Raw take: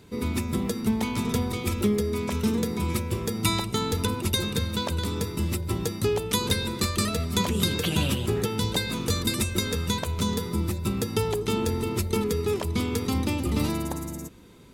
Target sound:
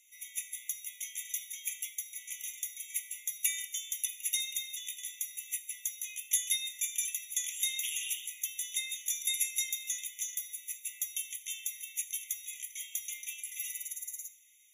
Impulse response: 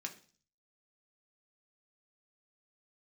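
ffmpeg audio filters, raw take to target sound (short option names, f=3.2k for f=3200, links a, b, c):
-filter_complex "[0:a]aexciter=amount=3.3:drive=7.7:freq=4.8k[a];[1:a]atrim=start_sample=2205,asetrate=33516,aresample=44100[b];[a][b]afir=irnorm=-1:irlink=0,afftfilt=real='re*eq(mod(floor(b*sr/1024/1900),2),1)':imag='im*eq(mod(floor(b*sr/1024/1900),2),1)':win_size=1024:overlap=0.75,volume=-6.5dB"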